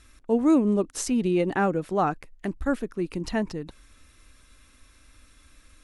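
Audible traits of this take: noise floor -57 dBFS; spectral tilt -6.0 dB/octave

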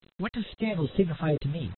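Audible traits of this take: phasing stages 2, 2.4 Hz, lowest notch 290–1600 Hz; a quantiser's noise floor 8-bit, dither none; AAC

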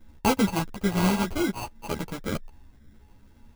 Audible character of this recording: a buzz of ramps at a fixed pitch in blocks of 16 samples; phasing stages 12, 0.68 Hz, lowest notch 680–1600 Hz; aliases and images of a low sample rate 1.8 kHz, jitter 0%; a shimmering, thickened sound

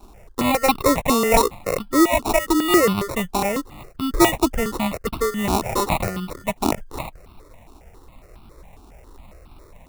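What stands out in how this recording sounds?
aliases and images of a low sample rate 1.6 kHz, jitter 0%; notches that jump at a steady rate 7.3 Hz 530–1900 Hz

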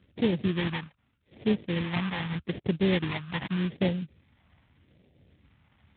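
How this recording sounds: aliases and images of a low sample rate 1.4 kHz, jitter 20%; phasing stages 2, 0.83 Hz, lowest notch 410–1100 Hz; Speex

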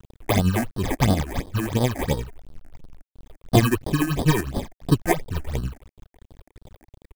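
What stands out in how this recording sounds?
a quantiser's noise floor 8-bit, dither none; tremolo triangle 11 Hz, depth 65%; aliases and images of a low sample rate 1.4 kHz, jitter 0%; phasing stages 8, 2.9 Hz, lowest notch 130–2300 Hz

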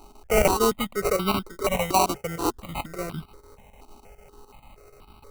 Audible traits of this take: a buzz of ramps at a fixed pitch in blocks of 8 samples; chopped level 6.7 Hz, depth 65%, duty 80%; aliases and images of a low sample rate 1.7 kHz, jitter 0%; notches that jump at a steady rate 4.2 Hz 500–1900 Hz

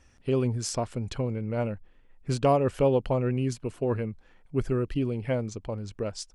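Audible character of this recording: noise floor -59 dBFS; spectral tilt -7.0 dB/octave

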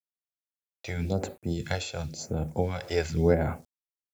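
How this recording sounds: a quantiser's noise floor 10-bit, dither none; phasing stages 2, 0.94 Hz, lowest notch 170–5000 Hz; random flutter of the level

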